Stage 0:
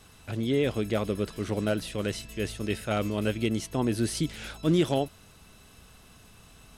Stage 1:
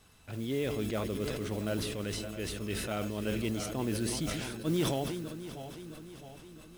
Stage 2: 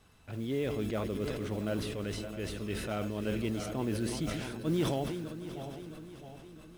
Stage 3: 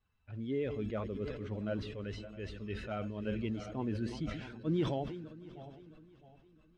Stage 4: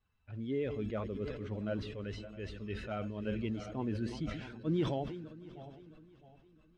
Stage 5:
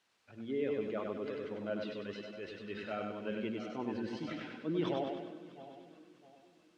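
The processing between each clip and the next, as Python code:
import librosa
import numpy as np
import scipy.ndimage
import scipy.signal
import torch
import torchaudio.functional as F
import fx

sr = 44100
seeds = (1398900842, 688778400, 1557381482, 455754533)

y1 = fx.reverse_delay_fb(x, sr, ms=331, feedback_pct=71, wet_db=-11.0)
y1 = fx.mod_noise(y1, sr, seeds[0], snr_db=21)
y1 = fx.sustainer(y1, sr, db_per_s=29.0)
y1 = F.gain(torch.from_numpy(y1), -7.5).numpy()
y2 = fx.high_shelf(y1, sr, hz=3500.0, db=-7.0)
y2 = y2 + 10.0 ** (-16.5 / 20.0) * np.pad(y2, (int(764 * sr / 1000.0), 0))[:len(y2)]
y3 = fx.bin_expand(y2, sr, power=1.5)
y3 = fx.air_absorb(y3, sr, metres=160.0)
y4 = y3
y5 = fx.dmg_noise_colour(y4, sr, seeds[1], colour='white', level_db=-71.0)
y5 = fx.bandpass_edges(y5, sr, low_hz=260.0, high_hz=4600.0)
y5 = fx.echo_feedback(y5, sr, ms=98, feedback_pct=47, wet_db=-4.0)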